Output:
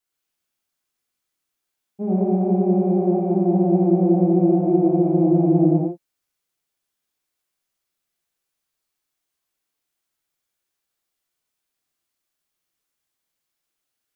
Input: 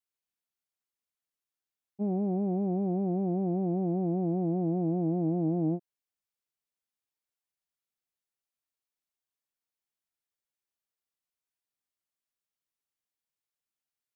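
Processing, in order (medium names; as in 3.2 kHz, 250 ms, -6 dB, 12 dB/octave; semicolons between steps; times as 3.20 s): gated-style reverb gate 190 ms flat, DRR -4.5 dB; trim +5.5 dB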